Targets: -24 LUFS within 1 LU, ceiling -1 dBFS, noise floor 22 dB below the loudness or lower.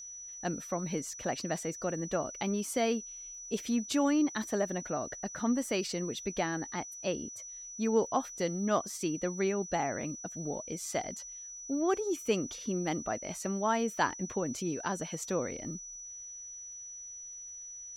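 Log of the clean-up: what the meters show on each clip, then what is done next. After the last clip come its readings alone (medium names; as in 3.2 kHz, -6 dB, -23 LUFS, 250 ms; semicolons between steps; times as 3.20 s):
tick rate 25 per s; steady tone 5.9 kHz; tone level -43 dBFS; loudness -34.0 LUFS; peak level -14.5 dBFS; loudness target -24.0 LUFS
-> de-click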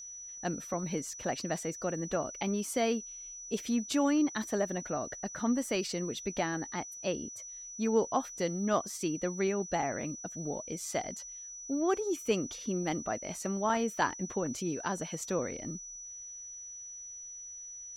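tick rate 0.056 per s; steady tone 5.9 kHz; tone level -43 dBFS
-> band-stop 5.9 kHz, Q 30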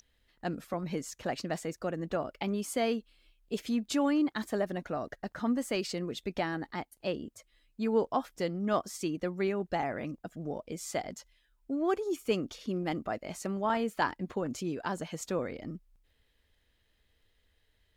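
steady tone not found; loudness -34.0 LUFS; peak level -15.0 dBFS; loudness target -24.0 LUFS
-> trim +10 dB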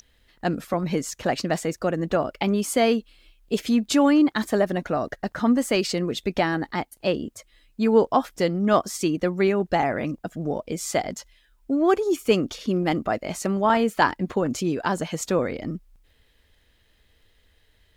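loudness -24.0 LUFS; peak level -5.0 dBFS; noise floor -63 dBFS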